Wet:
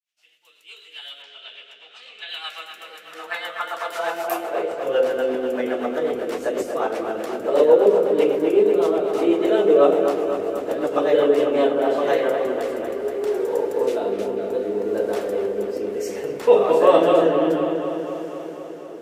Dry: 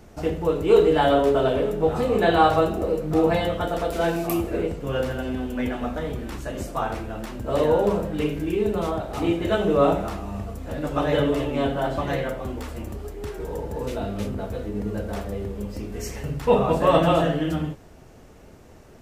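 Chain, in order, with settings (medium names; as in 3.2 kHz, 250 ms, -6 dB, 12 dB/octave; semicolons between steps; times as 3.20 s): fade-in on the opening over 3.99 s; 1.22–2.29 s: low-pass 4.7 kHz 12 dB/octave; in parallel at +3 dB: compression, threshold -31 dBFS, peak gain reduction 17 dB; on the sum: rotary cabinet horn 8 Hz, later 0.65 Hz, at 11.05 s; high-pass sweep 2.9 kHz -> 410 Hz, 2.23–5.25 s; on a send: feedback echo behind a low-pass 245 ms, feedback 69%, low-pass 3.1 kHz, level -7 dB; on the sum: trim -1 dB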